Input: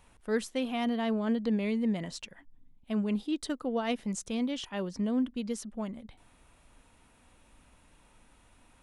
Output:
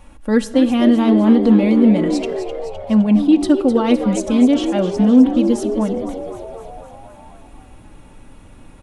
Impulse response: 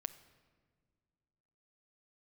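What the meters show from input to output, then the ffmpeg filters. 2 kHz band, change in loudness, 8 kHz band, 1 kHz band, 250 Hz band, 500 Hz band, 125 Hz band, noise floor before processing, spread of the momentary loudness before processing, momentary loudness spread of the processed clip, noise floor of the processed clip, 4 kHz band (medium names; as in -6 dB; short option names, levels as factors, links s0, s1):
+10.0 dB, +17.5 dB, +9.5 dB, +13.5 dB, +18.5 dB, +16.0 dB, +16.5 dB, -63 dBFS, 9 LU, 14 LU, -43 dBFS, +10.5 dB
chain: -filter_complex "[0:a]tiltshelf=f=910:g=4.5,aecho=1:1:3.6:0.63,asplit=9[s0][s1][s2][s3][s4][s5][s6][s7][s8];[s1]adelay=256,afreqshift=79,volume=0.299[s9];[s2]adelay=512,afreqshift=158,volume=0.184[s10];[s3]adelay=768,afreqshift=237,volume=0.115[s11];[s4]adelay=1024,afreqshift=316,volume=0.0708[s12];[s5]adelay=1280,afreqshift=395,volume=0.0442[s13];[s6]adelay=1536,afreqshift=474,volume=0.0272[s14];[s7]adelay=1792,afreqshift=553,volume=0.017[s15];[s8]adelay=2048,afreqshift=632,volume=0.0105[s16];[s0][s9][s10][s11][s12][s13][s14][s15][s16]amix=inputs=9:normalize=0,asplit=2[s17][s18];[1:a]atrim=start_sample=2205,afade=t=out:st=0.37:d=0.01,atrim=end_sample=16758[s19];[s18][s19]afir=irnorm=-1:irlink=0,volume=4.47[s20];[s17][s20]amix=inputs=2:normalize=0,volume=0.891"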